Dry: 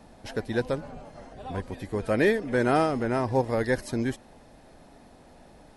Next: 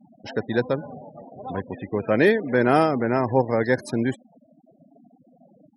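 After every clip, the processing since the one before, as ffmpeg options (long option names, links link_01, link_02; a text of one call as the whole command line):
ffmpeg -i in.wav -af "highpass=frequency=110:width=0.5412,highpass=frequency=110:width=1.3066,afftfilt=real='re*gte(hypot(re,im),0.0112)':imag='im*gte(hypot(re,im),0.0112)':win_size=1024:overlap=0.75,volume=4.5dB" out.wav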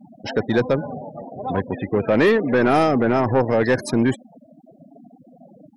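ffmpeg -i in.wav -filter_complex "[0:a]asplit=2[link_01][link_02];[link_02]alimiter=limit=-14dB:level=0:latency=1:release=17,volume=0dB[link_03];[link_01][link_03]amix=inputs=2:normalize=0,asoftclip=type=tanh:threshold=-11dB,volume=1.5dB" out.wav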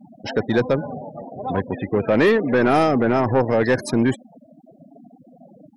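ffmpeg -i in.wav -af anull out.wav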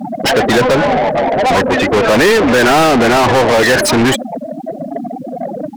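ffmpeg -i in.wav -filter_complex "[0:a]asplit=2[link_01][link_02];[link_02]highpass=frequency=720:poles=1,volume=34dB,asoftclip=type=tanh:threshold=-9.5dB[link_03];[link_01][link_03]amix=inputs=2:normalize=0,lowpass=frequency=7200:poles=1,volume=-6dB,volume=4.5dB" out.wav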